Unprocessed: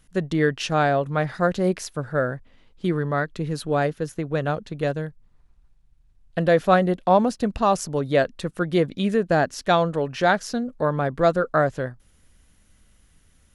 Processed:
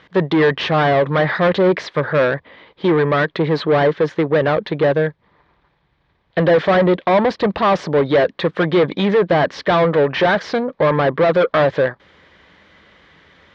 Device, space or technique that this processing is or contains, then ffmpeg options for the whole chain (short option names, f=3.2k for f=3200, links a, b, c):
overdrive pedal into a guitar cabinet: -filter_complex "[0:a]asplit=2[a][b];[b]highpass=f=720:p=1,volume=31dB,asoftclip=type=tanh:threshold=-4dB[c];[a][c]amix=inputs=2:normalize=0,lowpass=f=3.6k:p=1,volume=-6dB,highpass=79,equalizer=f=120:t=q:w=4:g=-7,equalizer=f=240:t=q:w=4:g=-9,equalizer=f=730:t=q:w=4:g=-5,equalizer=f=1.4k:t=q:w=4:g=-7,equalizer=f=2.7k:t=q:w=4:g=-10,lowpass=f=3.4k:w=0.5412,lowpass=f=3.4k:w=1.3066"